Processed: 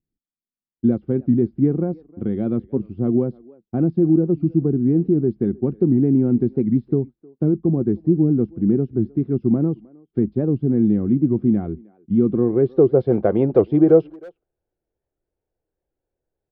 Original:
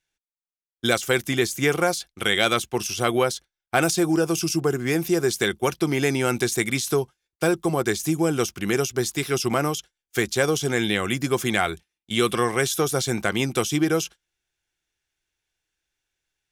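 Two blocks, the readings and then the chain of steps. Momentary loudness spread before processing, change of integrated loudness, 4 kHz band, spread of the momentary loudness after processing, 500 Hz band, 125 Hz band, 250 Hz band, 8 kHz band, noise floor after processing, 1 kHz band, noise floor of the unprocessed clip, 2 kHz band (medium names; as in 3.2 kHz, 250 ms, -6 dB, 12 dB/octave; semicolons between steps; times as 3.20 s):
5 LU, +4.0 dB, under -35 dB, 8 LU, +3.0 dB, +7.0 dB, +8.0 dB, under -40 dB, under -85 dBFS, under -10 dB, under -85 dBFS, under -20 dB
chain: low-pass sweep 250 Hz -> 540 Hz, 12.23–13.16 s; resampled via 11.025 kHz; speakerphone echo 310 ms, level -23 dB; warped record 78 rpm, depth 160 cents; trim +4.5 dB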